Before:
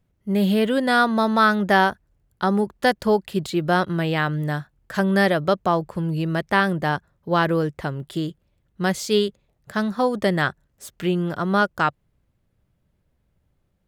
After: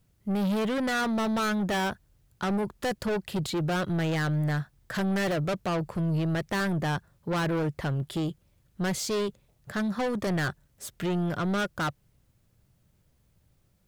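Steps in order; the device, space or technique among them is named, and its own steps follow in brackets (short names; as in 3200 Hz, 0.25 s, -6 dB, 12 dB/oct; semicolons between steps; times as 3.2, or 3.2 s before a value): open-reel tape (soft clip -25.5 dBFS, distortion -6 dB; bell 120 Hz +4.5 dB 0.86 oct; white noise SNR 48 dB)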